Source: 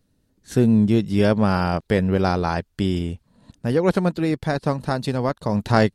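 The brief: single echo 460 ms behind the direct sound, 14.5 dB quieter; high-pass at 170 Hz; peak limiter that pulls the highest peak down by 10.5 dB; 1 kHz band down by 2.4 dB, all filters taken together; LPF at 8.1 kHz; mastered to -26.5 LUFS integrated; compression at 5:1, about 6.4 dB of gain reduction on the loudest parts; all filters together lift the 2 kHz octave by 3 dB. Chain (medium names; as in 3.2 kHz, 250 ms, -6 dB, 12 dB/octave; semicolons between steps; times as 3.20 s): high-pass 170 Hz; low-pass 8.1 kHz; peaking EQ 1 kHz -5 dB; peaking EQ 2 kHz +6 dB; compression 5:1, threshold -21 dBFS; peak limiter -18 dBFS; delay 460 ms -14.5 dB; trim +3.5 dB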